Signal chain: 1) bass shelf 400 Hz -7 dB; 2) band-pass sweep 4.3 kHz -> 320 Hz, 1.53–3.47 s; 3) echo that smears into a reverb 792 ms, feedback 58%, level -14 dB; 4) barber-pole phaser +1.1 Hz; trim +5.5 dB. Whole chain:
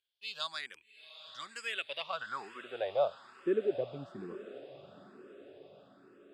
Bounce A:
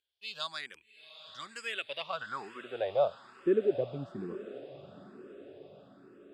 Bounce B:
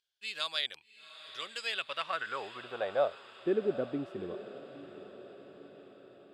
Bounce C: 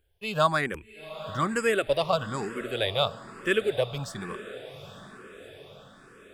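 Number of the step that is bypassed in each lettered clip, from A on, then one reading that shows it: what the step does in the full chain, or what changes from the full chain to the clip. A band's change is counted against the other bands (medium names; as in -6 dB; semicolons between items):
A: 1, 125 Hz band +5.0 dB; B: 4, 4 kHz band +2.5 dB; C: 2, 125 Hz band +10.0 dB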